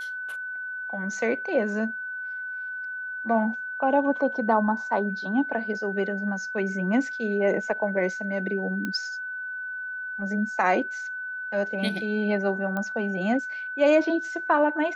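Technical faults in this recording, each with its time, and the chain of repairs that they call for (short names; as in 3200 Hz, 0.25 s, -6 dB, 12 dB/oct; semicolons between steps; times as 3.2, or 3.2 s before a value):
tone 1500 Hz -31 dBFS
8.85 pop -17 dBFS
12.77 pop -18 dBFS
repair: de-click; notch 1500 Hz, Q 30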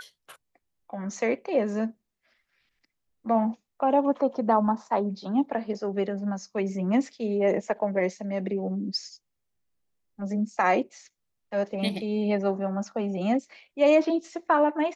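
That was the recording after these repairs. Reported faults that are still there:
none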